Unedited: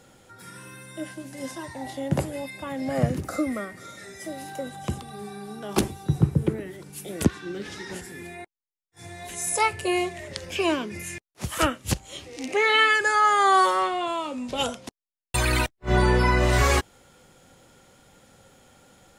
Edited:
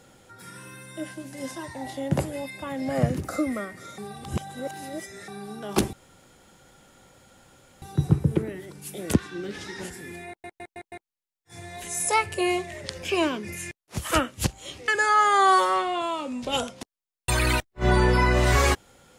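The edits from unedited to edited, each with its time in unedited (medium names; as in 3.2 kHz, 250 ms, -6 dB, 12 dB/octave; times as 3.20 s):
3.98–5.28 s: reverse
5.93 s: insert room tone 1.89 s
8.39 s: stutter 0.16 s, 5 plays
12.35–12.94 s: delete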